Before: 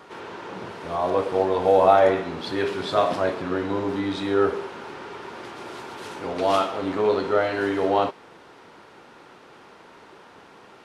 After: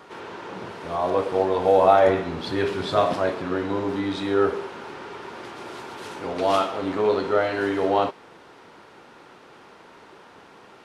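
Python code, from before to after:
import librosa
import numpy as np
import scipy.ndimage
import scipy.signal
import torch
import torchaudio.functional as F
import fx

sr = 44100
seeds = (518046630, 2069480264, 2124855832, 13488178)

y = fx.low_shelf(x, sr, hz=120.0, db=9.5, at=(2.07, 3.14))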